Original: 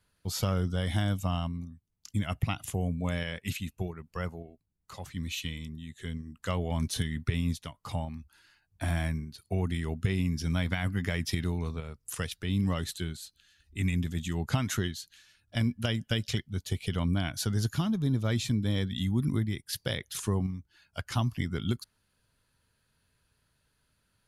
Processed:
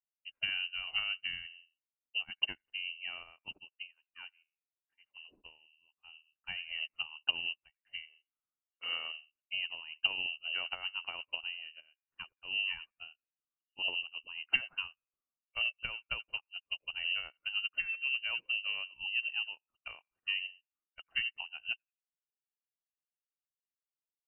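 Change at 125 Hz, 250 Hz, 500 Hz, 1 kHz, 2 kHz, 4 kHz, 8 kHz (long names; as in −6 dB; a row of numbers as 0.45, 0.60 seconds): below −35 dB, below −30 dB, −21.0 dB, −11.5 dB, +4.0 dB, +3.0 dB, below −40 dB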